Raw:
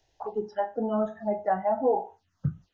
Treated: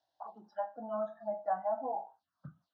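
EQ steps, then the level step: cabinet simulation 440–3900 Hz, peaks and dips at 480 Hz -4 dB, 870 Hz -8 dB, 1.3 kHz -4 dB, 1.9 kHz -9 dB, 3.1 kHz -5 dB; static phaser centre 1 kHz, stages 4; 0.0 dB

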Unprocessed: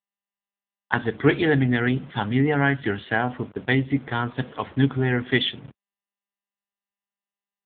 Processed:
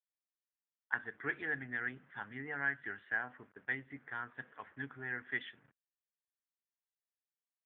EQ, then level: band-pass filter 1.7 kHz, Q 3.8; tilt EQ -3.5 dB/octave; -6.0 dB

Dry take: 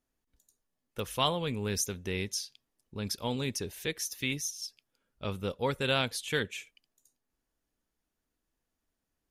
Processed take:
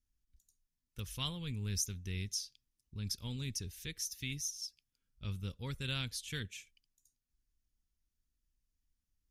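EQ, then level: amplifier tone stack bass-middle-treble 6-0-2; bass shelf 93 Hz +11.5 dB; peaking EQ 5.6 kHz +4.5 dB 0.58 oct; +8.0 dB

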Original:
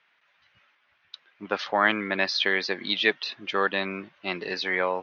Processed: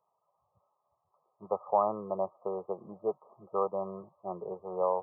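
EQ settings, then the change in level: high-pass 81 Hz; brick-wall FIR low-pass 1.3 kHz; static phaser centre 670 Hz, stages 4; 0.0 dB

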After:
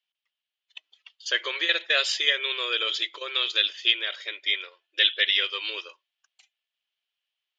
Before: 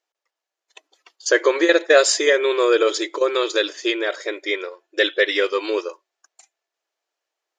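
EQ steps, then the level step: band-pass filter 3.1 kHz, Q 4.3; distance through air 61 m; +8.5 dB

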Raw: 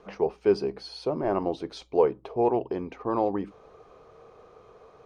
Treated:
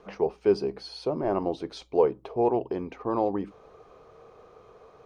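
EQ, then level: dynamic bell 1.8 kHz, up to -3 dB, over -39 dBFS, Q 1; 0.0 dB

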